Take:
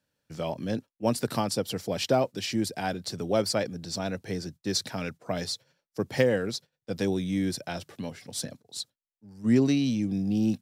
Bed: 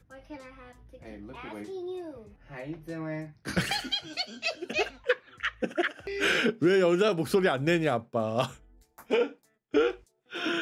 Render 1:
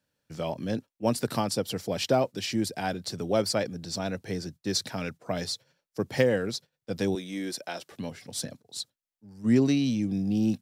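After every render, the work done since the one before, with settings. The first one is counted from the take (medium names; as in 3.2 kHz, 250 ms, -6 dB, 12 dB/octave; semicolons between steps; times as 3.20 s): 7.15–7.92 s: high-pass 340 Hz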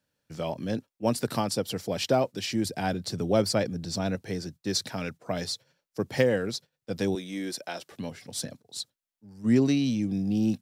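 2.65–4.16 s: bass shelf 290 Hz +6 dB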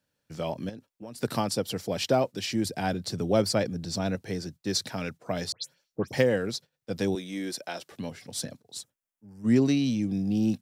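0.69–1.23 s: compression 8:1, threshold -38 dBFS; 5.52–6.13 s: phase dispersion highs, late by 127 ms, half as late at 2.9 kHz; 8.78–9.45 s: peaking EQ 4.2 kHz -13.5 dB 0.5 oct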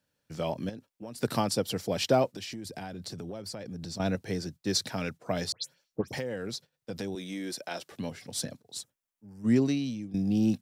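2.27–4.00 s: compression 16:1, threshold -35 dBFS; 6.01–7.71 s: compression 4:1, threshold -32 dBFS; 9.35–10.14 s: fade out, to -14.5 dB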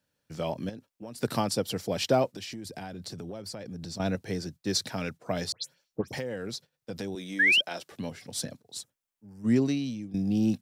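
7.39–7.61 s: painted sound rise 1.6–3.3 kHz -21 dBFS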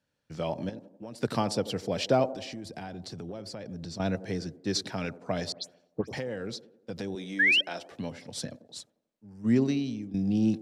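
distance through air 54 m; feedback echo behind a band-pass 89 ms, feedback 51%, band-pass 430 Hz, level -13 dB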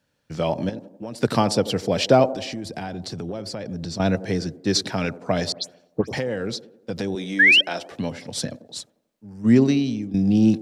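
trim +8.5 dB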